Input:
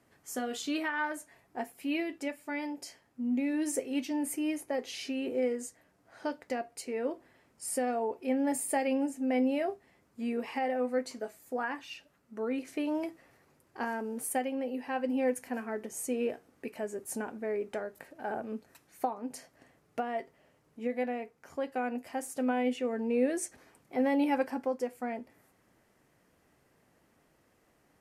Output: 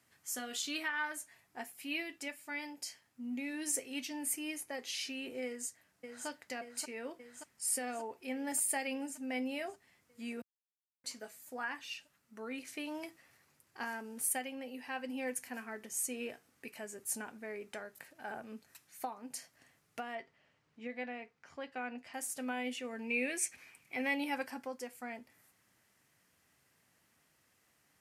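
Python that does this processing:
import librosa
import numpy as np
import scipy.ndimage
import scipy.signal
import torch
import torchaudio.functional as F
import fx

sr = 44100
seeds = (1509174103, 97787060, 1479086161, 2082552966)

y = fx.echo_throw(x, sr, start_s=5.45, length_s=0.82, ms=580, feedback_pct=70, wet_db=-6.0)
y = fx.lowpass(y, sr, hz=4300.0, slope=12, at=(20.15, 22.14))
y = fx.peak_eq(y, sr, hz=2400.0, db=14.5, octaves=0.41, at=(22.99, 24.19))
y = fx.edit(y, sr, fx.silence(start_s=10.42, length_s=0.62), tone=tone)
y = scipy.signal.sosfilt(scipy.signal.butter(2, 74.0, 'highpass', fs=sr, output='sos'), y)
y = fx.tone_stack(y, sr, knobs='5-5-5')
y = y * 10.0 ** (9.0 / 20.0)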